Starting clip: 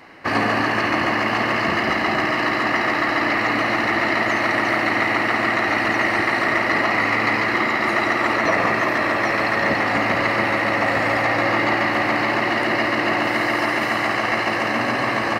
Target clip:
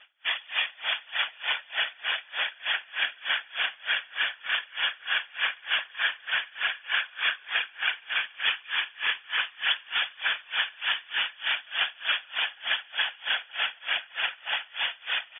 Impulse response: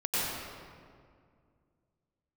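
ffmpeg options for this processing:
-af "aecho=1:1:6.9:0.65,afftfilt=real='hypot(re,im)*cos(2*PI*random(0))':imag='hypot(re,im)*sin(2*PI*random(1))':win_size=512:overlap=0.75,aecho=1:1:892:0.282,lowpass=f=3.1k:t=q:w=0.5098,lowpass=f=3.1k:t=q:w=0.6013,lowpass=f=3.1k:t=q:w=0.9,lowpass=f=3.1k:t=q:w=2.563,afreqshift=-3600,aeval=exprs='val(0)*pow(10,-29*(0.5-0.5*cos(2*PI*3.3*n/s))/20)':c=same"

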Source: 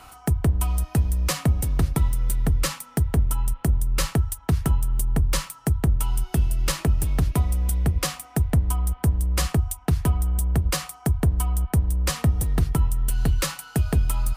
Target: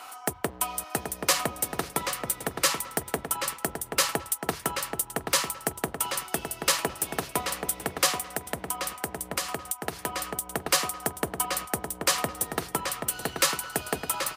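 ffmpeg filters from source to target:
-filter_complex "[0:a]highpass=470,asplit=2[a][b];[b]adelay=781,lowpass=f=3.4k:p=1,volume=-5.5dB,asplit=2[c][d];[d]adelay=781,lowpass=f=3.4k:p=1,volume=0.21,asplit=2[e][f];[f]adelay=781,lowpass=f=3.4k:p=1,volume=0.21[g];[a][c][e][g]amix=inputs=4:normalize=0,asettb=1/sr,asplit=3[h][i][j];[h]atrim=end=8.204[k];[i]atrim=start=8.2:end=10.52,asetpts=PTS-STARTPTS,afade=t=in:d=0.004:c=qsin,afade=t=out:st=2.316:d=0.004:c=qsin,acompressor=threshold=-30dB:ratio=10[l];[j]atrim=start=10.516[m];[k][l]acrossfade=d=0.004:c1=hsin:c2=qsin[n];[n][m]acrossfade=d=0.004:c1=qsin:c2=hsin,volume=4dB"

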